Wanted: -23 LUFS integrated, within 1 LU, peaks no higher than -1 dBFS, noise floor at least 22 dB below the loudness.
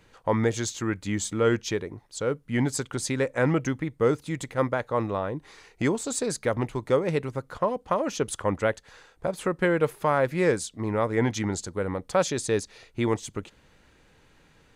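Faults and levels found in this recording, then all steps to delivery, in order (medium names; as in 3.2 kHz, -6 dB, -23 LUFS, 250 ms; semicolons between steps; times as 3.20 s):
loudness -27.5 LUFS; peak level -11.0 dBFS; loudness target -23.0 LUFS
-> trim +4.5 dB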